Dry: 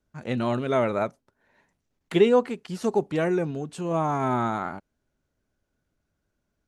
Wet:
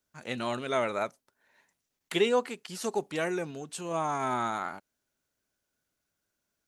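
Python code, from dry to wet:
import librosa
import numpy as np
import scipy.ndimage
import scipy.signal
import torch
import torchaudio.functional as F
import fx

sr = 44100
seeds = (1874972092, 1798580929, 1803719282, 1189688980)

y = fx.tilt_eq(x, sr, slope=3.0)
y = F.gain(torch.from_numpy(y), -3.5).numpy()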